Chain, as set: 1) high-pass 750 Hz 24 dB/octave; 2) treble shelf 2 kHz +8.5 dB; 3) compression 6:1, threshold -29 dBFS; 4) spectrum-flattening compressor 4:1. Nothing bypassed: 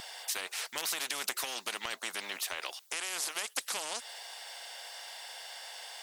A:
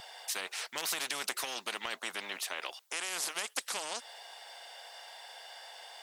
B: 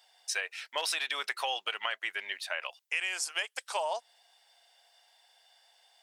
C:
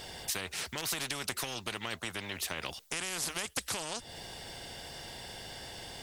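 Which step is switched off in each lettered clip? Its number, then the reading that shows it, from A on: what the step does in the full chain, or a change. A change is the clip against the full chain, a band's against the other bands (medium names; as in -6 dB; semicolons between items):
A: 2, 8 kHz band -2.0 dB; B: 4, 8 kHz band -9.0 dB; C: 1, 250 Hz band +10.0 dB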